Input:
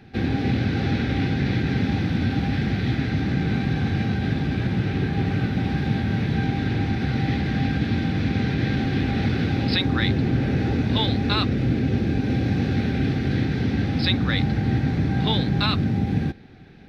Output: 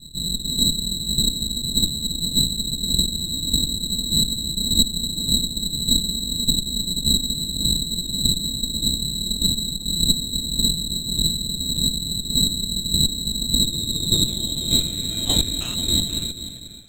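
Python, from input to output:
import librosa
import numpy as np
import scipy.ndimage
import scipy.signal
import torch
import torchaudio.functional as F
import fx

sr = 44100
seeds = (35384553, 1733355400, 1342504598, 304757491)

y = fx.tilt_eq(x, sr, slope=-3.0)
y = fx.hum_notches(y, sr, base_hz=50, count=3)
y = fx.rider(y, sr, range_db=10, speed_s=0.5)
y = fx.filter_sweep_lowpass(y, sr, from_hz=120.0, to_hz=2500.0, start_s=13.49, end_s=15.1, q=1.2)
y = fx.chopper(y, sr, hz=1.7, depth_pct=60, duty_pct=20)
y = fx.freq_invert(y, sr, carrier_hz=4000)
y = y + 10.0 ** (-13.5 / 20.0) * np.pad(y, (int(486 * sr / 1000.0), 0))[:len(y)]
y = fx.running_max(y, sr, window=5)
y = y * 10.0 ** (-2.0 / 20.0)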